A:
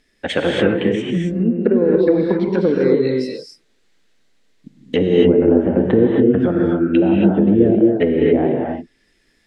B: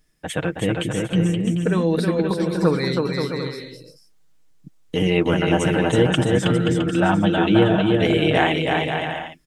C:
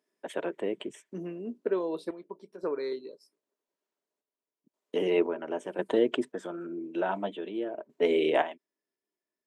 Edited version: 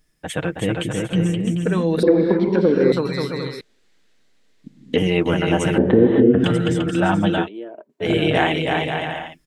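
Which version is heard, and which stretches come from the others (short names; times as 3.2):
B
2.03–2.92 from A
3.61–4.98 from A
5.78–6.44 from A
7.44–8.05 from C, crossfade 0.10 s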